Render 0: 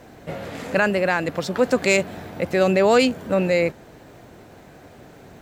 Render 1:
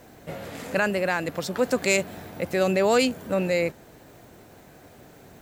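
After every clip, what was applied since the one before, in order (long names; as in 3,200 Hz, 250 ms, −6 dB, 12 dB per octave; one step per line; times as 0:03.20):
high-shelf EQ 8,100 Hz +11.5 dB
level −4.5 dB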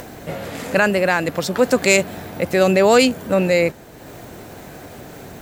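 upward compression, threshold −37 dBFS
level +7.5 dB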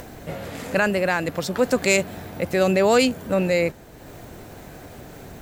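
low-shelf EQ 63 Hz +11 dB
level −4.5 dB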